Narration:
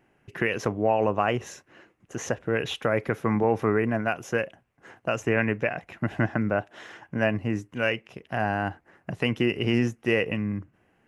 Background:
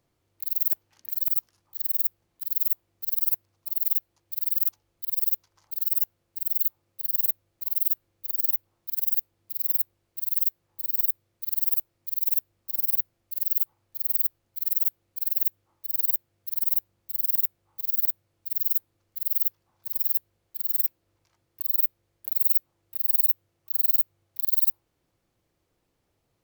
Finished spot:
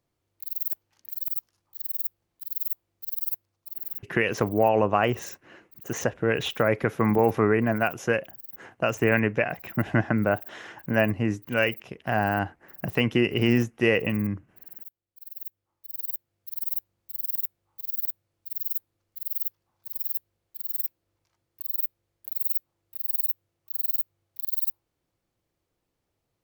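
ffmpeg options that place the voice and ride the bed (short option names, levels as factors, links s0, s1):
-filter_complex "[0:a]adelay=3750,volume=1.26[s0];[1:a]volume=2.82,afade=t=out:st=3.35:d=0.91:silence=0.199526,afade=t=in:st=15.12:d=1.5:silence=0.199526[s1];[s0][s1]amix=inputs=2:normalize=0"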